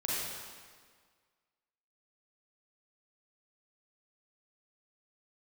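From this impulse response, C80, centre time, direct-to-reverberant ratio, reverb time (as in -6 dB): -1.0 dB, 0.128 s, -7.0 dB, 1.7 s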